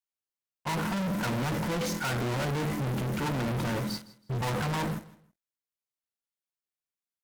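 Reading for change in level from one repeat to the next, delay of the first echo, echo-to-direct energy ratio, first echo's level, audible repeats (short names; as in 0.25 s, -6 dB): -12.0 dB, 0.161 s, -18.5 dB, -19.0 dB, 2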